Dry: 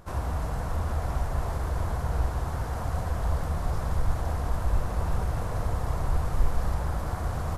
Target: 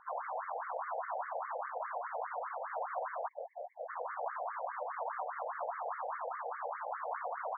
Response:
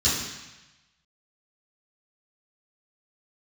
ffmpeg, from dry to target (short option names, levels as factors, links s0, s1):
-filter_complex "[0:a]asplit=3[s0][s1][s2];[s0]afade=t=out:st=3.27:d=0.02[s3];[s1]asuperstop=centerf=1300:order=8:qfactor=0.76,afade=t=in:st=3.27:d=0.02,afade=t=out:st=3.88:d=0.02[s4];[s2]afade=t=in:st=3.88:d=0.02[s5];[s3][s4][s5]amix=inputs=3:normalize=0,afftfilt=real='re*between(b*sr/1024,610*pow(1600/610,0.5+0.5*sin(2*PI*4.9*pts/sr))/1.41,610*pow(1600/610,0.5+0.5*sin(2*PI*4.9*pts/sr))*1.41)':imag='im*between(b*sr/1024,610*pow(1600/610,0.5+0.5*sin(2*PI*4.9*pts/sr))/1.41,610*pow(1600/610,0.5+0.5*sin(2*PI*4.9*pts/sr))*1.41)':win_size=1024:overlap=0.75,volume=1.33"